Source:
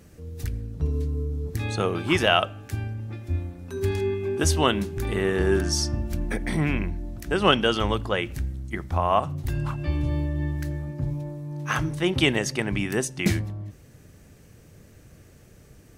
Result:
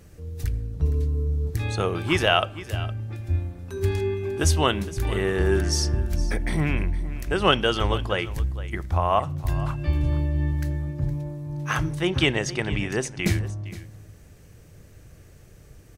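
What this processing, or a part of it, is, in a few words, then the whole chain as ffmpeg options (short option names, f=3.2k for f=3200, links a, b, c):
low shelf boost with a cut just above: -filter_complex "[0:a]asettb=1/sr,asplit=3[a][b][c];[a]atrim=end=12.074[d];[b]atrim=start=12.07:end=13.24,asetpts=PTS-STARTPTS,afade=t=in:d=0.004:c=qsin,afade=t=out:st=1.166:d=0.004:c=qsin,lowpass=7.6k[e];[c]atrim=start=13.236[f];[d][e]acrossfade=d=0.004:c1=hsin:c2=qsin[g];[g][f]acrossfade=d=0.004:c1=qsin:c2=hsin,lowshelf=f=74:g=7,equalizer=f=230:t=o:w=0.61:g=-5,aecho=1:1:463:0.158"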